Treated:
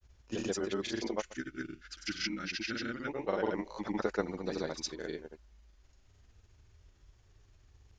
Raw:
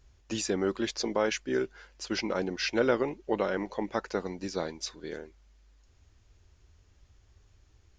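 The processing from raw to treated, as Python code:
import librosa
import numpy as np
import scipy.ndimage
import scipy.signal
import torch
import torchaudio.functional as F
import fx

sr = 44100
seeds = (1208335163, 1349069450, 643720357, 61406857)

y = fx.granulator(x, sr, seeds[0], grain_ms=100.0, per_s=20.0, spray_ms=100.0, spread_st=0)
y = fx.rider(y, sr, range_db=3, speed_s=0.5)
y = fx.spec_box(y, sr, start_s=1.39, length_s=1.7, low_hz=350.0, high_hz=1200.0, gain_db=-17)
y = fx.granulator(y, sr, seeds[1], grain_ms=100.0, per_s=20.0, spray_ms=100.0, spread_st=0)
y = y * 10.0 ** (-1.5 / 20.0)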